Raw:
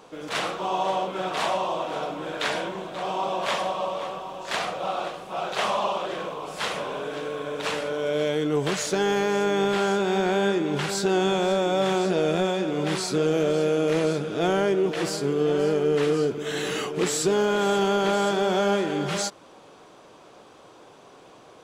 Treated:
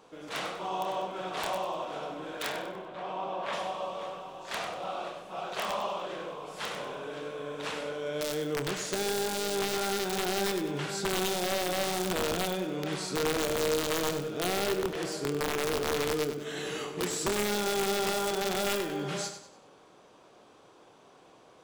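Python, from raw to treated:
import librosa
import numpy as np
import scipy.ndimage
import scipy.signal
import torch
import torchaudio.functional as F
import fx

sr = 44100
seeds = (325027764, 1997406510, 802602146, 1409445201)

y = fx.bass_treble(x, sr, bass_db=-2, treble_db=-13, at=(2.51, 3.53))
y = fx.highpass(y, sr, hz=46.0, slope=12, at=(11.42, 11.87))
y = (np.mod(10.0 ** (15.0 / 20.0) * y + 1.0, 2.0) - 1.0) / 10.0 ** (15.0 / 20.0)
y = fx.doubler(y, sr, ms=28.0, db=-12)
y = fx.echo_feedback(y, sr, ms=97, feedback_pct=37, wet_db=-9.5)
y = F.gain(torch.from_numpy(y), -8.0).numpy()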